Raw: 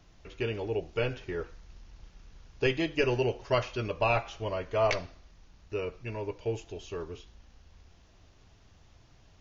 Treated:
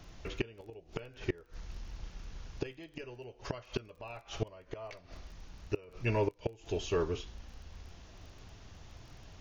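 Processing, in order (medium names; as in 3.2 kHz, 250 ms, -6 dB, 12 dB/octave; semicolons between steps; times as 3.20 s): inverted gate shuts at -26 dBFS, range -26 dB; crackle 17 per s -55 dBFS; trim +6.5 dB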